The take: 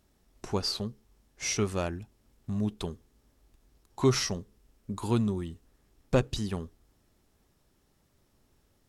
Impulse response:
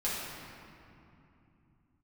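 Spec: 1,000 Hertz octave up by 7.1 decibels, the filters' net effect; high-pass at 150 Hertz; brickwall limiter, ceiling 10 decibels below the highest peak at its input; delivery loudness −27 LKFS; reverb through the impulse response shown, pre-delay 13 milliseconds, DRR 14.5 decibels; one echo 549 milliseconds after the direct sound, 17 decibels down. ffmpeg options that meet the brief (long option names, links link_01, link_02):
-filter_complex "[0:a]highpass=150,equalizer=frequency=1000:width_type=o:gain=8.5,alimiter=limit=-17.5dB:level=0:latency=1,aecho=1:1:549:0.141,asplit=2[link_01][link_02];[1:a]atrim=start_sample=2205,adelay=13[link_03];[link_02][link_03]afir=irnorm=-1:irlink=0,volume=-21.5dB[link_04];[link_01][link_04]amix=inputs=2:normalize=0,volume=6.5dB"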